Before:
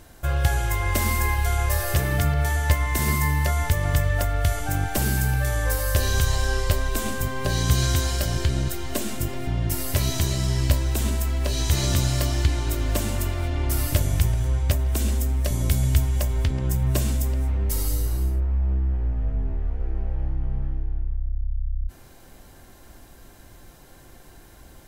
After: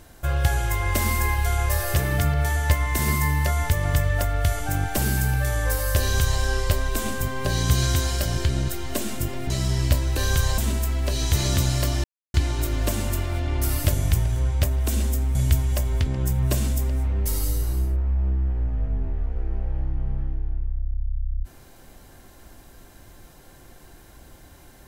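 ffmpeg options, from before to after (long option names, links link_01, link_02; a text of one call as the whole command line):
ffmpeg -i in.wav -filter_complex "[0:a]asplit=6[link_01][link_02][link_03][link_04][link_05][link_06];[link_01]atrim=end=9.502[link_07];[link_02]atrim=start=10.288:end=10.962[link_08];[link_03]atrim=start=6.008:end=6.422[link_09];[link_04]atrim=start=10.958:end=12.42,asetpts=PTS-STARTPTS,afade=type=out:start_time=1.458:duration=0.004:curve=hsin,apad=pad_dur=0.3[link_10];[link_05]atrim=start=12.42:end=15.432,asetpts=PTS-STARTPTS,afade=type=in:duration=0.004:curve=hsin[link_11];[link_06]atrim=start=15.788[link_12];[link_07][link_08]acrossfade=duration=0.004:curve1=hsin:curve2=hsin[link_13];[link_13][link_09]acrossfade=duration=0.004:curve1=hsin:curve2=hsin[link_14];[link_10][link_11]concat=n=2:v=0:a=1[link_15];[link_14][link_15]acrossfade=duration=0.004:curve1=hsin:curve2=hsin[link_16];[link_16][link_12]acrossfade=duration=0.004:curve1=hsin:curve2=hsin" out.wav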